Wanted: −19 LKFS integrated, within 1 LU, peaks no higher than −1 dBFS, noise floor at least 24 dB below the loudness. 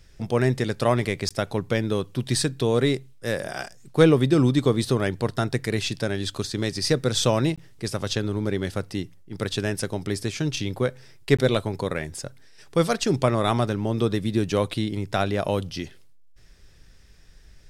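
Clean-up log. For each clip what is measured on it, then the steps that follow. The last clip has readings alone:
number of dropouts 3; longest dropout 16 ms; integrated loudness −24.5 LKFS; sample peak −4.0 dBFS; target loudness −19.0 LKFS
→ repair the gap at 0:01.29/0:07.56/0:11.37, 16 ms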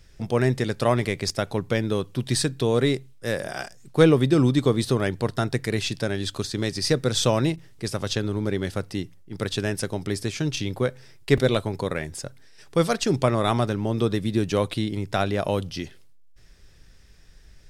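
number of dropouts 0; integrated loudness −24.5 LKFS; sample peak −4.0 dBFS; target loudness −19.0 LKFS
→ level +5.5 dB
brickwall limiter −1 dBFS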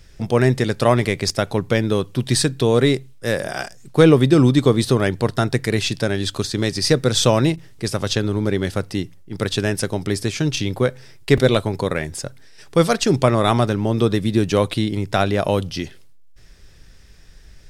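integrated loudness −19.5 LKFS; sample peak −1.0 dBFS; background noise floor −44 dBFS

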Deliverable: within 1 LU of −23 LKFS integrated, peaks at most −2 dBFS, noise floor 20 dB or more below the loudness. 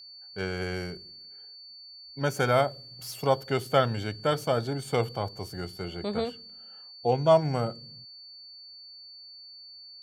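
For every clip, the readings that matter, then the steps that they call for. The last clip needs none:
interfering tone 4,500 Hz; level of the tone −45 dBFS; integrated loudness −28.5 LKFS; sample peak −8.5 dBFS; target loudness −23.0 LKFS
→ notch filter 4,500 Hz, Q 30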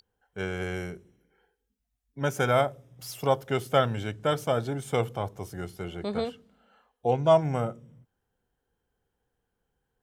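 interfering tone none found; integrated loudness −28.5 LKFS; sample peak −8.5 dBFS; target loudness −23.0 LKFS
→ level +5.5 dB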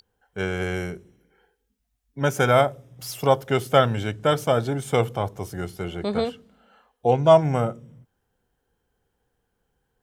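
integrated loudness −23.0 LKFS; sample peak −3.0 dBFS; background noise floor −76 dBFS

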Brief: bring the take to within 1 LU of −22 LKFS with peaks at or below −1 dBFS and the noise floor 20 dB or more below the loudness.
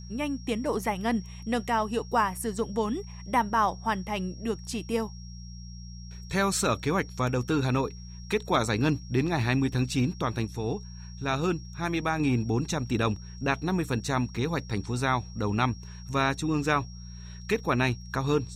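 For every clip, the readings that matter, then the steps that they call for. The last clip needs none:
mains hum 60 Hz; hum harmonics up to 180 Hz; level of the hum −39 dBFS; interfering tone 5,600 Hz; level of the tone −50 dBFS; integrated loudness −28.5 LKFS; sample peak −11.5 dBFS; target loudness −22.0 LKFS
→ hum removal 60 Hz, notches 3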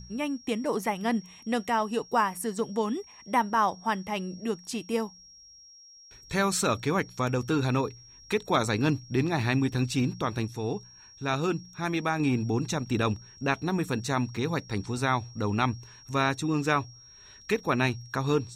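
mains hum none found; interfering tone 5,600 Hz; level of the tone −50 dBFS
→ notch filter 5,600 Hz, Q 30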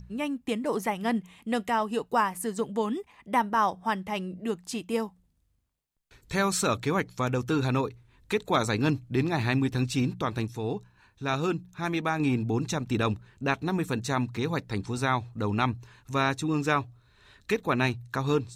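interfering tone none found; integrated loudness −29.0 LKFS; sample peak −11.0 dBFS; target loudness −22.0 LKFS
→ level +7 dB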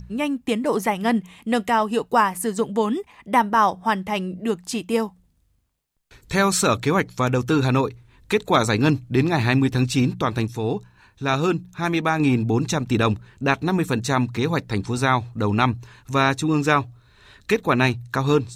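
integrated loudness −22.0 LKFS; sample peak −4.0 dBFS; background noise floor −61 dBFS

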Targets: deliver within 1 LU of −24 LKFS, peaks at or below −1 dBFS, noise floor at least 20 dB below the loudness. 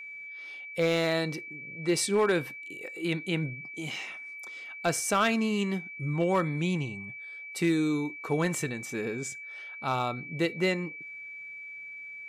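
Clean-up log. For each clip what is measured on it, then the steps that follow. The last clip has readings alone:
share of clipped samples 0.2%; peaks flattened at −18.5 dBFS; interfering tone 2,300 Hz; level of the tone −40 dBFS; integrated loudness −30.5 LKFS; sample peak −18.5 dBFS; target loudness −24.0 LKFS
→ clipped peaks rebuilt −18.5 dBFS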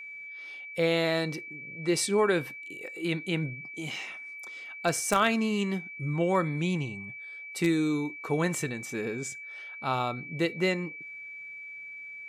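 share of clipped samples 0.0%; interfering tone 2,300 Hz; level of the tone −40 dBFS
→ notch filter 2,300 Hz, Q 30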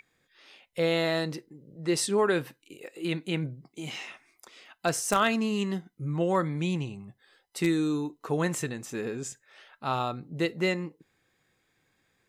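interfering tone none found; integrated loudness −29.5 LKFS; sample peak −9.5 dBFS; target loudness −24.0 LKFS
→ level +5.5 dB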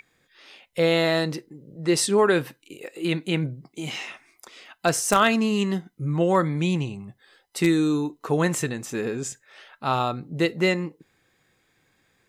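integrated loudness −24.0 LKFS; sample peak −4.0 dBFS; background noise floor −68 dBFS

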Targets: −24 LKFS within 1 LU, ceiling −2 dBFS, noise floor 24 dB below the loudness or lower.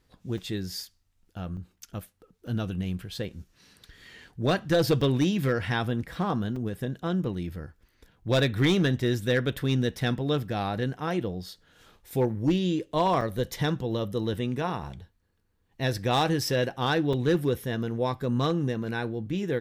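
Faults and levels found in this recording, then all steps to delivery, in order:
share of clipped samples 0.5%; peaks flattened at −16.5 dBFS; number of dropouts 7; longest dropout 4.3 ms; integrated loudness −28.0 LKFS; sample peak −16.5 dBFS; target loudness −24.0 LKFS
→ clipped peaks rebuilt −16.5 dBFS
repair the gap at 0:00.38/0:01.57/0:02.47/0:05.01/0:06.56/0:13.21/0:17.13, 4.3 ms
level +4 dB

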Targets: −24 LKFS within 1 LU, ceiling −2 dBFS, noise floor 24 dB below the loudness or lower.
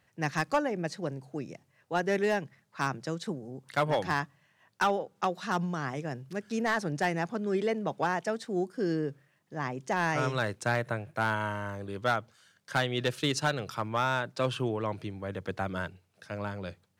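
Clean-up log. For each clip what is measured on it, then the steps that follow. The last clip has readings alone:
share of clipped samples 0.4%; peaks flattened at −19.0 dBFS; integrated loudness −32.0 LKFS; sample peak −19.0 dBFS; target loudness −24.0 LKFS
→ clipped peaks rebuilt −19 dBFS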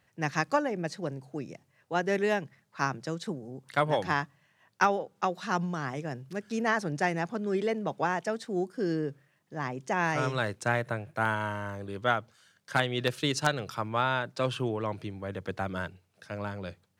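share of clipped samples 0.0%; integrated loudness −31.0 LKFS; sample peak −10.0 dBFS; target loudness −24.0 LKFS
→ level +7 dB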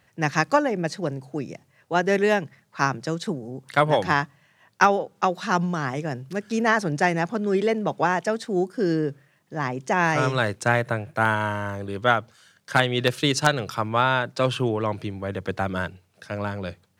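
integrated loudness −24.0 LKFS; sample peak −3.0 dBFS; background noise floor −63 dBFS

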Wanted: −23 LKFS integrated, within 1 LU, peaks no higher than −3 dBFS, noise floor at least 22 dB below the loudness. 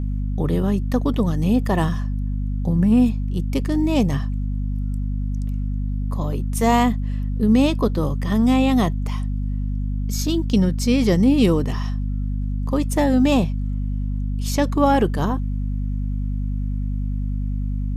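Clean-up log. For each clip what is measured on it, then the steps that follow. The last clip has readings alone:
mains hum 50 Hz; hum harmonics up to 250 Hz; level of the hum −21 dBFS; integrated loudness −21.5 LKFS; sample peak −4.5 dBFS; target loudness −23.0 LKFS
→ hum removal 50 Hz, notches 5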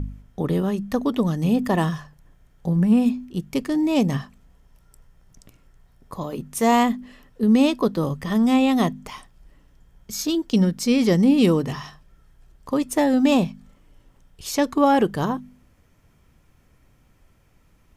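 mains hum none found; integrated loudness −21.5 LKFS; sample peak −6.0 dBFS; target loudness −23.0 LKFS
→ level −1.5 dB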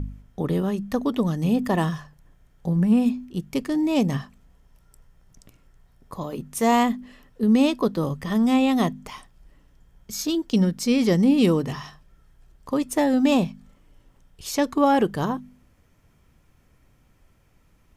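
integrated loudness −23.0 LKFS; sample peak −7.5 dBFS; background noise floor −60 dBFS

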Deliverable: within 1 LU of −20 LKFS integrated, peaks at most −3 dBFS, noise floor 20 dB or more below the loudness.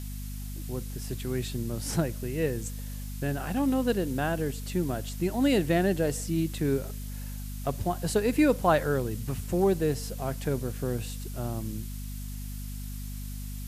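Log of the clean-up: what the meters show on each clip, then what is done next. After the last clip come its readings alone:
mains hum 50 Hz; hum harmonics up to 250 Hz; level of the hum −34 dBFS; background noise floor −37 dBFS; target noise floor −50 dBFS; integrated loudness −30.0 LKFS; sample peak −10.0 dBFS; target loudness −20.0 LKFS
→ hum removal 50 Hz, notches 5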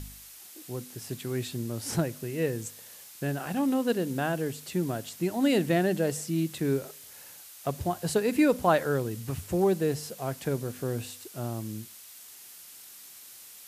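mains hum none found; background noise floor −49 dBFS; target noise floor −50 dBFS
→ broadband denoise 6 dB, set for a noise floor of −49 dBFS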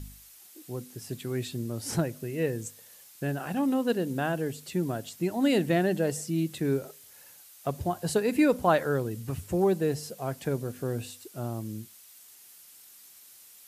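background noise floor −53 dBFS; integrated loudness −29.5 LKFS; sample peak −10.0 dBFS; target loudness −20.0 LKFS
→ level +9.5 dB
brickwall limiter −3 dBFS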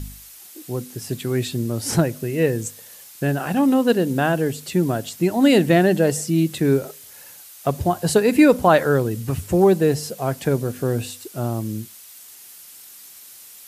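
integrated loudness −20.0 LKFS; sample peak −3.0 dBFS; background noise floor −44 dBFS

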